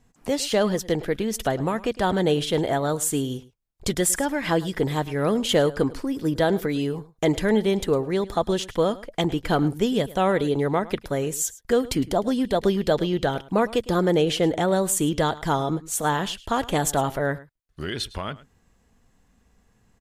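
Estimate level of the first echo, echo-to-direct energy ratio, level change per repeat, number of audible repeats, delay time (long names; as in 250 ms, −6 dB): −19.0 dB, −19.0 dB, repeats not evenly spaced, 1, 107 ms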